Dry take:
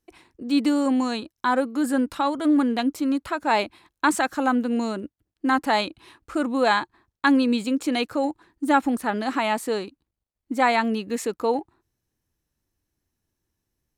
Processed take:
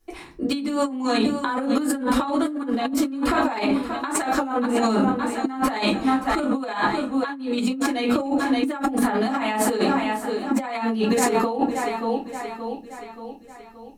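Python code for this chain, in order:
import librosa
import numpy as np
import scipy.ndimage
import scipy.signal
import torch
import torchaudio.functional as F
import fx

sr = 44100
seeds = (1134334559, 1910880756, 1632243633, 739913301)

p1 = x + fx.echo_feedback(x, sr, ms=576, feedback_pct=50, wet_db=-15, dry=0)
p2 = fx.room_shoebox(p1, sr, seeds[0], volume_m3=130.0, walls='furnished', distance_m=3.2)
p3 = fx.over_compress(p2, sr, threshold_db=-22.0, ratio=-1.0)
y = p3 * 10.0 ** (-1.5 / 20.0)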